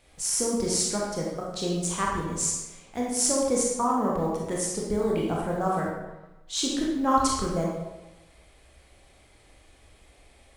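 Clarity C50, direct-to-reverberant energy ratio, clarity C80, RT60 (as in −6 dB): 0.0 dB, −3.5 dB, 3.5 dB, 1.1 s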